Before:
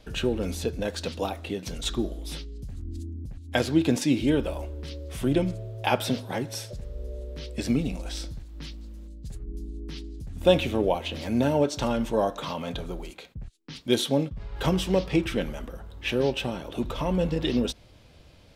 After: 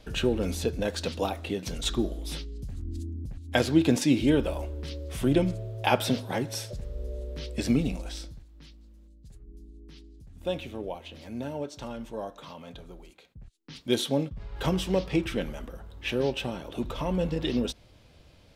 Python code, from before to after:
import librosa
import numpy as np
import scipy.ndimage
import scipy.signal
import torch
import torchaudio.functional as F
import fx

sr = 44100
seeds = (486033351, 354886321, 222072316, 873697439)

y = fx.gain(x, sr, db=fx.line((7.89, 0.5), (8.6, -11.5), (13.23, -11.5), (13.81, -2.5)))